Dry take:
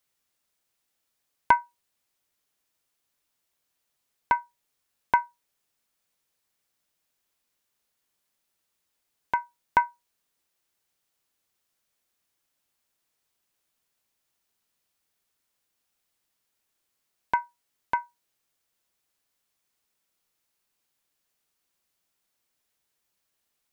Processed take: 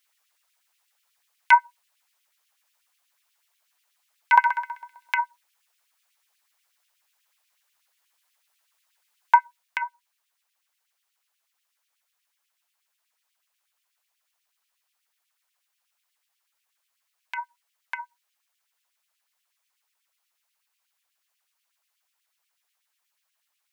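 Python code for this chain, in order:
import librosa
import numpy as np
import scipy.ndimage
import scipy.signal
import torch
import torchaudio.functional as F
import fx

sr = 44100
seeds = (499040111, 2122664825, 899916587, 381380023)

y = fx.room_flutter(x, sr, wall_m=11.1, rt60_s=0.95, at=(4.35, 5.16), fade=0.02)
y = fx.rider(y, sr, range_db=10, speed_s=0.5)
y = fx.filter_lfo_highpass(y, sr, shape='sine', hz=8.2, low_hz=730.0, high_hz=2800.0, q=2.1)
y = y * 10.0 ** (2.0 / 20.0)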